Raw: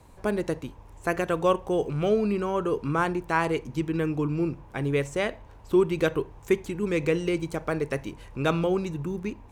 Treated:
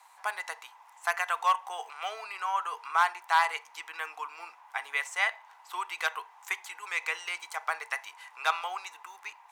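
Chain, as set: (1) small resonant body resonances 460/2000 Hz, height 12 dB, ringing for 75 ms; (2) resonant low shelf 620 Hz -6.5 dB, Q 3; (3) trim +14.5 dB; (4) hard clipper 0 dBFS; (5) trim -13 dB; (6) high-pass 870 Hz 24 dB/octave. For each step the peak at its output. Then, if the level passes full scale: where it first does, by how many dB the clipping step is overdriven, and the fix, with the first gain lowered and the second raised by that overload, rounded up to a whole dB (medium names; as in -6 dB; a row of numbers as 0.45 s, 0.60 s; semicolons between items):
-8.0 dBFS, -7.0 dBFS, +7.5 dBFS, 0.0 dBFS, -13.0 dBFS, -11.5 dBFS; step 3, 7.5 dB; step 3 +6.5 dB, step 5 -5 dB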